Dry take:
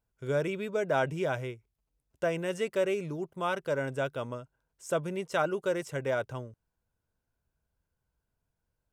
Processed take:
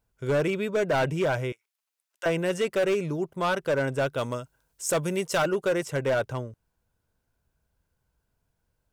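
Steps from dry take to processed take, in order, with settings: 1.52–2.26 HPF 1300 Hz 12 dB/oct; 4.17–5.45 high shelf 3200 Hz -> 4800 Hz +10.5 dB; hard clip -26.5 dBFS, distortion -12 dB; gain +6.5 dB

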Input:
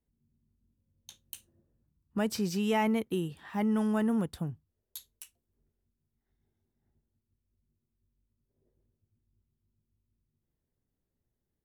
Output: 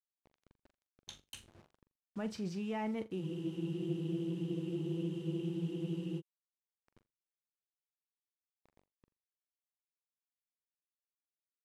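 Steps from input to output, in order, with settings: high shelf 3300 Hz -4.5 dB; reverse; compressor 4:1, threshold -46 dBFS, peak gain reduction 17.5 dB; reverse; bit-crush 11-bit; air absorption 60 m; on a send: flutter echo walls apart 7.2 m, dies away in 0.2 s; on the sum: spectral freeze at 3.22, 2.96 s; Doppler distortion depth 0.1 ms; gain +7 dB

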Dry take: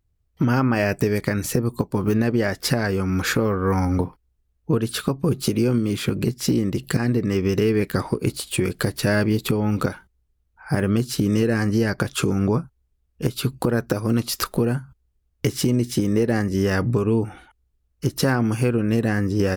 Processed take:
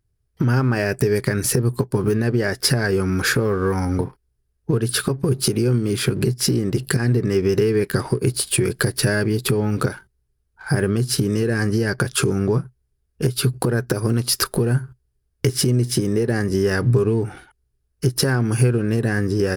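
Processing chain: compressor, threshold -23 dBFS, peak gain reduction 8.5 dB; sample leveller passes 1; thirty-one-band EQ 125 Hz +9 dB, 400 Hz +8 dB, 1600 Hz +6 dB, 5000 Hz +6 dB, 10000 Hz +10 dB

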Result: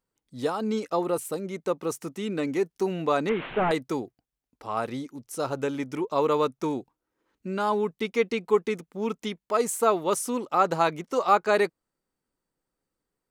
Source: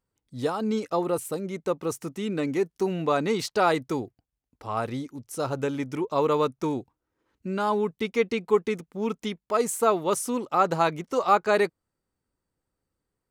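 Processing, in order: 3.29–3.71 delta modulation 16 kbps, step -31 dBFS; bell 80 Hz -14 dB 0.98 oct

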